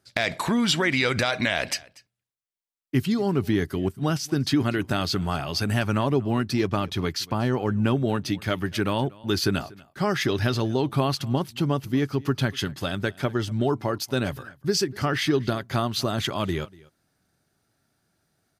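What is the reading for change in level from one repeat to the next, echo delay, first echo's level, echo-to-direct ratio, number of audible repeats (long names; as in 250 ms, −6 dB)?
repeats not evenly spaced, 240 ms, −23.0 dB, −23.0 dB, 1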